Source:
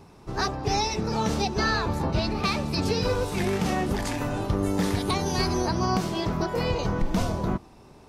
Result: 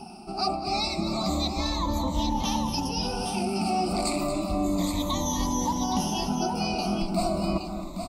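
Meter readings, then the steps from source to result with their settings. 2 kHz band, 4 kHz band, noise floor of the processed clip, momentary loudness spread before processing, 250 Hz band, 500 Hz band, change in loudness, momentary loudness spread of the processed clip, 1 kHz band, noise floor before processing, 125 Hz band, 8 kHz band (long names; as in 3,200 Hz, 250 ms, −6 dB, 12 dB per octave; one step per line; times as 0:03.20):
−7.5 dB, +1.0 dB, −36 dBFS, 4 LU, +0.5 dB, −3.5 dB, −1.0 dB, 2 LU, +0.5 dB, −51 dBFS, −5.5 dB, +3.0 dB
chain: rippled gain that drifts along the octave scale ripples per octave 1.1, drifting −0.31 Hz, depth 20 dB
reversed playback
downward compressor 6 to 1, threshold −30 dBFS, peak gain reduction 15 dB
reversed playback
phaser with its sweep stopped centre 440 Hz, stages 6
multi-tap delay 229/818 ms −11/−8 dB
level +8 dB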